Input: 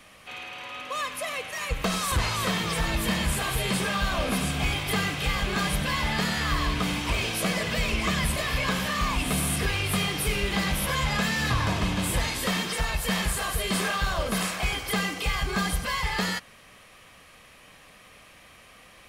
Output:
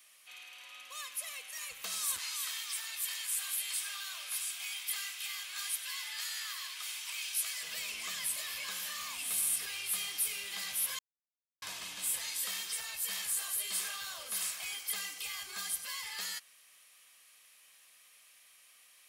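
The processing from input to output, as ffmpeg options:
ffmpeg -i in.wav -filter_complex "[0:a]asettb=1/sr,asplit=3[link_01][link_02][link_03];[link_01]atrim=end=2.184[link_04];[link_02]atrim=start=2.18:end=7.63,asetpts=PTS-STARTPTS,afade=type=in:duration=0.004:curve=qsin,afade=type=out:start_time=5.446:duration=0.004:curve=qsin,highpass=1100[link_05];[link_03]atrim=start=7.626[link_06];[link_04][link_05]acrossfade=duration=0.004:curve1=hsin:curve2=qsin[link_07];[link_07][link_06]acrossfade=duration=0.004:curve1=qsin:curve2=hsin,asplit=3[link_08][link_09][link_10];[link_08]atrim=end=10.99,asetpts=PTS-STARTPTS,afade=type=out:start_time=10.986:duration=0.004:curve=hsin[link_11];[link_09]atrim=start=10.99:end=11.62,asetpts=PTS-STARTPTS,volume=0[link_12];[link_10]atrim=start=11.62,asetpts=PTS-STARTPTS,afade=type=in:duration=0.004:curve=hsin[link_13];[link_11][link_12][link_13]concat=n=3:v=0:a=1,aderivative,volume=-2.5dB" out.wav

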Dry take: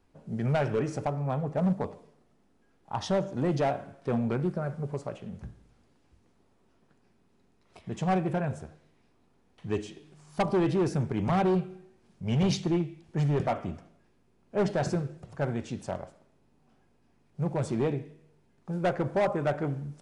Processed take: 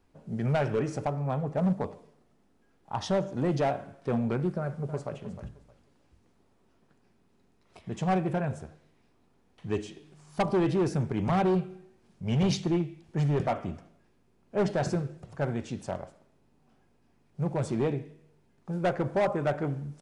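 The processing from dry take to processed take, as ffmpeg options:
ffmpeg -i in.wav -filter_complex "[0:a]asplit=2[link_01][link_02];[link_02]afade=type=in:start_time=4.57:duration=0.01,afade=type=out:start_time=5.17:duration=0.01,aecho=0:1:310|620|930:0.266073|0.0532145|0.0106429[link_03];[link_01][link_03]amix=inputs=2:normalize=0" out.wav

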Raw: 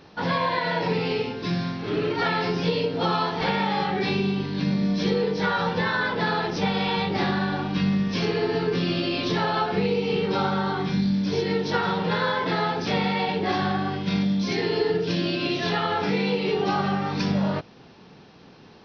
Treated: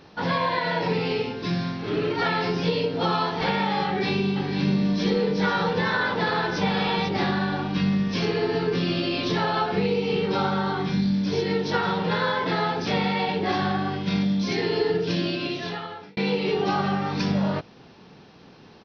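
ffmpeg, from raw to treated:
ffmpeg -i in.wav -filter_complex "[0:a]asplit=3[link_01][link_02][link_03];[link_01]afade=type=out:start_time=4.35:duration=0.02[link_04];[link_02]aecho=1:1:493:0.398,afade=type=in:start_time=4.35:duration=0.02,afade=type=out:start_time=7.08:duration=0.02[link_05];[link_03]afade=type=in:start_time=7.08:duration=0.02[link_06];[link_04][link_05][link_06]amix=inputs=3:normalize=0,asplit=2[link_07][link_08];[link_07]atrim=end=16.17,asetpts=PTS-STARTPTS,afade=type=out:start_time=15.19:duration=0.98[link_09];[link_08]atrim=start=16.17,asetpts=PTS-STARTPTS,afade=type=in:duration=0.004:curve=hsin[link_10];[link_09][link_10]concat=n=2:v=0:a=1" out.wav

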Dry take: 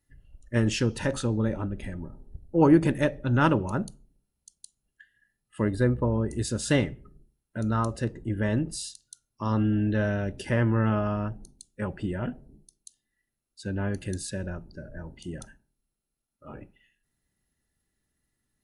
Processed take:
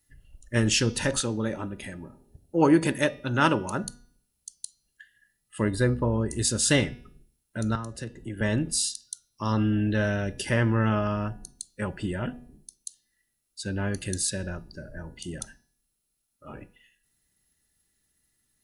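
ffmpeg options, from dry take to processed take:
ffmpeg -i in.wav -filter_complex "[0:a]asettb=1/sr,asplit=3[link_01][link_02][link_03];[link_01]atrim=end=1.204[link_04];[link_02]atrim=start=1.2:end=3.84,asetpts=PTS-STARTPTS,afade=type=in:duration=0.004:curve=qsin,afade=type=out:start_time=2.636:duration=0.004:curve=qsin,highpass=frequency=190:poles=1[link_05];[link_03]atrim=start=3.836[link_06];[link_04][link_05]acrossfade=duration=0.004:curve1=hsin:curve2=qsin[link_07];[link_07][link_06]acrossfade=duration=0.004:curve1=qsin:curve2=hsin,asettb=1/sr,asplit=3[link_08][link_09][link_10];[link_08]atrim=end=7.754[link_11];[link_09]atrim=start=7.75:end=8.41,asetpts=PTS-STARTPTS,afade=type=in:duration=0.004:curve=qsin,afade=type=out:start_time=0.656:duration=0.004:curve=qsin,acrossover=split=110|350[link_12][link_13][link_14];[link_12]acompressor=threshold=-45dB:ratio=4[link_15];[link_13]acompressor=threshold=-38dB:ratio=4[link_16];[link_14]acompressor=threshold=-41dB:ratio=4[link_17];[link_15][link_16][link_17]amix=inputs=3:normalize=0[link_18];[link_10]atrim=start=8.406[link_19];[link_11][link_18]acrossfade=duration=0.004:curve1=hsin:curve2=qsin[link_20];[link_20][link_19]acrossfade=duration=0.004:curve1=qsin:curve2=hsin,highshelf=frequency=2500:gain=11,bandreject=frequency=242.9:width_type=h:width=4,bandreject=frequency=485.8:width_type=h:width=4,bandreject=frequency=728.7:width_type=h:width=4,bandreject=frequency=971.6:width_type=h:width=4,bandreject=frequency=1214.5:width_type=h:width=4,bandreject=frequency=1457.4:width_type=h:width=4,bandreject=frequency=1700.3:width_type=h:width=4,bandreject=frequency=1943.2:width_type=h:width=4,bandreject=frequency=2186.1:width_type=h:width=4,bandreject=frequency=2429:width_type=h:width=4,bandreject=frequency=2671.9:width_type=h:width=4,bandreject=frequency=2914.8:width_type=h:width=4,bandreject=frequency=3157.7:width_type=h:width=4,bandreject=frequency=3400.6:width_type=h:width=4,bandreject=frequency=3643.5:width_type=h:width=4,bandreject=frequency=3886.4:width_type=h:width=4,bandreject=frequency=4129.3:width_type=h:width=4,bandreject=frequency=4372.2:width_type=h:width=4,bandreject=frequency=4615.1:width_type=h:width=4,bandreject=frequency=4858:width_type=h:width=4,bandreject=frequency=5100.9:width_type=h:width=4,bandreject=frequency=5343.8:width_type=h:width=4,bandreject=frequency=5586.7:width_type=h:width=4,bandreject=frequency=5829.6:width_type=h:width=4,bandreject=frequency=6072.5:width_type=h:width=4" out.wav

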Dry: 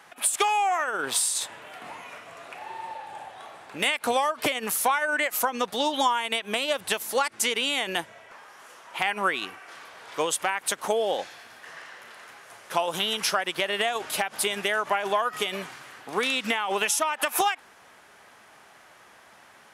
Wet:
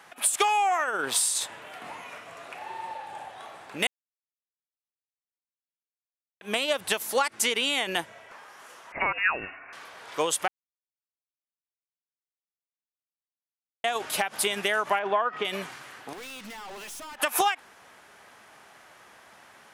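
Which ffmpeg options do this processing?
ffmpeg -i in.wav -filter_complex "[0:a]asettb=1/sr,asplit=3[link_01][link_02][link_03];[link_01]atrim=end=8.924[link_04];[link_02]atrim=start=8.92:end=9.73,asetpts=PTS-STARTPTS,afade=type=in:duration=0.004:curve=qsin,afade=type=out:start_time=0.806:duration=0.004:curve=qsin,lowpass=frequency=2600:width_type=q:width=0.5098,lowpass=frequency=2600:width_type=q:width=0.6013,lowpass=frequency=2600:width_type=q:width=0.9,lowpass=frequency=2600:width_type=q:width=2.563,afreqshift=-3000[link_05];[link_03]atrim=start=9.726[link_06];[link_04][link_05]acrossfade=duration=0.004:curve1=hsin:curve2=qsin[link_07];[link_07][link_06]acrossfade=duration=0.004:curve1=qsin:curve2=hsin,asettb=1/sr,asplit=3[link_08][link_09][link_10];[link_08]atrim=end=14.994[link_11];[link_09]atrim=start=14.99:end=15.45,asetpts=PTS-STARTPTS,afade=type=in:duration=0.004:curve=qsin,afade=type=out:start_time=0.456:duration=0.004:curve=qsin,highpass=160,lowpass=2300[link_12];[link_10]atrim=start=15.446[link_13];[link_11][link_12]acrossfade=duration=0.004:curve1=hsin:curve2=qsin[link_14];[link_14][link_13]acrossfade=duration=0.004:curve1=qsin:curve2=hsin,asettb=1/sr,asplit=3[link_15][link_16][link_17];[link_15]atrim=end=16.134[link_18];[link_16]atrim=start=16.13:end=17.2,asetpts=PTS-STARTPTS,afade=type=in:duration=0.004:curve=qsin,afade=type=out:start_time=1.066:duration=0.004:curve=qsin,aeval=exprs='(tanh(100*val(0)+0.3)-tanh(0.3))/100':channel_layout=same[link_19];[link_17]atrim=start=17.196[link_20];[link_18][link_19]acrossfade=duration=0.004:curve1=hsin:curve2=qsin[link_21];[link_21][link_20]acrossfade=duration=0.004:curve1=qsin:curve2=hsin,asplit=5[link_22][link_23][link_24][link_25][link_26];[link_22]atrim=end=3.87,asetpts=PTS-STARTPTS,afade=type=out:start_time=3.866:duration=0.004:curve=hsin[link_27];[link_23]atrim=start=3.87:end=6.41,asetpts=PTS-STARTPTS,volume=0[link_28];[link_24]atrim=start=6.41:end=10.48,asetpts=PTS-STARTPTS,afade=type=in:duration=0.004:curve=hsin,afade=type=out:start_time=4.066:duration=0.004:curve=hsin[link_29];[link_25]atrim=start=10.48:end=13.84,asetpts=PTS-STARTPTS,volume=0[link_30];[link_26]atrim=start=13.84,asetpts=PTS-STARTPTS,afade=type=in:duration=0.004:curve=hsin[link_31];[link_27][link_28][link_29][link_30][link_31]concat=n=5:v=0:a=1" out.wav

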